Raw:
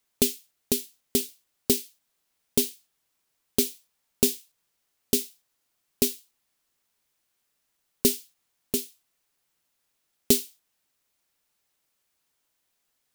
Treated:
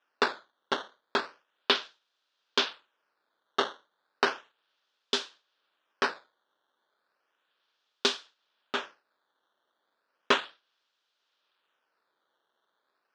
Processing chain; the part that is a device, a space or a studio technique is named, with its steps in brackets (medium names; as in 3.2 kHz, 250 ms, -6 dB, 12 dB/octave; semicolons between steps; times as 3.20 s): circuit-bent sampling toy (decimation with a swept rate 10×, swing 160% 0.34 Hz; cabinet simulation 510–4900 Hz, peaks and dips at 730 Hz -5 dB, 1.5 kHz +4 dB, 2.1 kHz -8 dB, 3.4 kHz +5 dB)